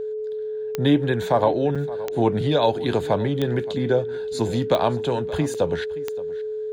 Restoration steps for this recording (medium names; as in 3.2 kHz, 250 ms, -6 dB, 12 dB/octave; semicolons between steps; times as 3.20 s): de-click; band-stop 430 Hz, Q 30; interpolate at 1.75/5.54 s, 6.2 ms; inverse comb 573 ms -18.5 dB